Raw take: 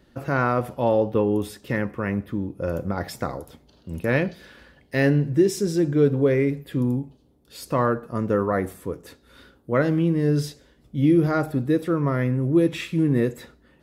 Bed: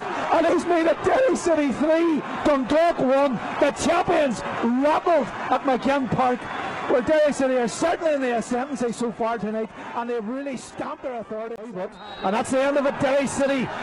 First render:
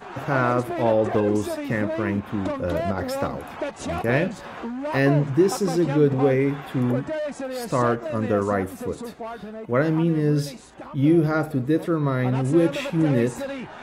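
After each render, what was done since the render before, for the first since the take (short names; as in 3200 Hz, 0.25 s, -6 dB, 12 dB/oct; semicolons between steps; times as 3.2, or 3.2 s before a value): add bed -9.5 dB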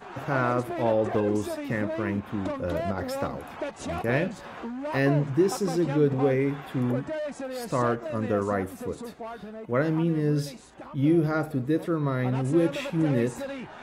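gain -4 dB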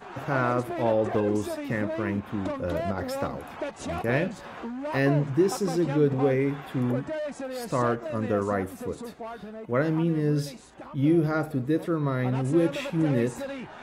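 nothing audible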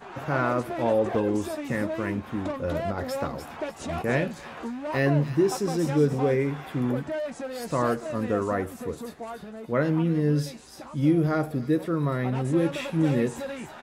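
doubler 13 ms -11 dB; thin delay 0.296 s, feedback 34%, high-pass 3600 Hz, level -7 dB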